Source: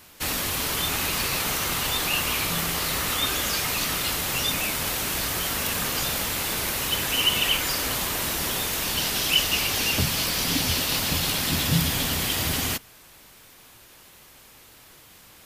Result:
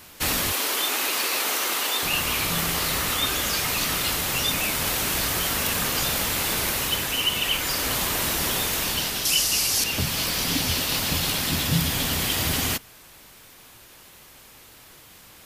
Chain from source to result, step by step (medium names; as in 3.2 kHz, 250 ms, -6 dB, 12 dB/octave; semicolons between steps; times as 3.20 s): 0.52–2.03 s: high-pass 290 Hz 24 dB/octave; 9.25–9.84 s: high-order bell 7.4 kHz +10.5 dB; gain riding within 4 dB 0.5 s